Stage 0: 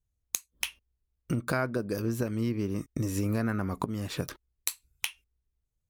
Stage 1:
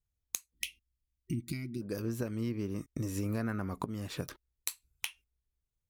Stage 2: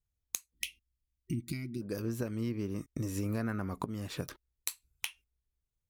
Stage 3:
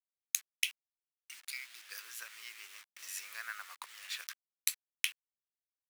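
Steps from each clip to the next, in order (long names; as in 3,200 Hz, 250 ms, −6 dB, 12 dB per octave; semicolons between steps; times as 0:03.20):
gain on a spectral selection 0:00.54–0:01.82, 380–1,900 Hz −30 dB; level −5 dB
no processing that can be heard
hold until the input has moved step −47.5 dBFS; four-pole ladder high-pass 1,400 Hz, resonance 25%; level +9.5 dB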